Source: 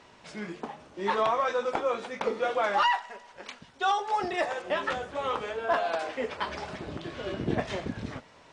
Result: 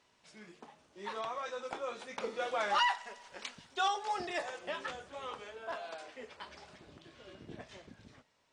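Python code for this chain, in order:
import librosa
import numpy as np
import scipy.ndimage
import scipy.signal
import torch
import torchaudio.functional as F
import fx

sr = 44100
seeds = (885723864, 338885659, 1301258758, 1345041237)

y = fx.doppler_pass(x, sr, speed_mps=5, closest_m=3.8, pass_at_s=3.31)
y = fx.high_shelf(y, sr, hz=2900.0, db=9.5)
y = F.gain(torch.from_numpy(y), -5.0).numpy()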